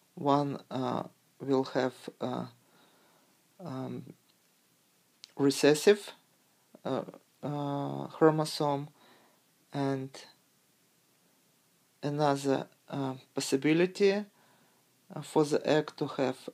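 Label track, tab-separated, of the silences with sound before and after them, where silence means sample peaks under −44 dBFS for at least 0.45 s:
2.480000	3.600000	silence
4.110000	5.240000	silence
6.140000	6.750000	silence
8.880000	9.730000	silence
10.250000	12.030000	silence
14.240000	15.110000	silence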